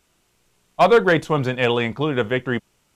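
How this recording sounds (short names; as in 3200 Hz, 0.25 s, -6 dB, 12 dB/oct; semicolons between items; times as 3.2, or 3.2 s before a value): noise floor -66 dBFS; spectral tilt -4.0 dB/oct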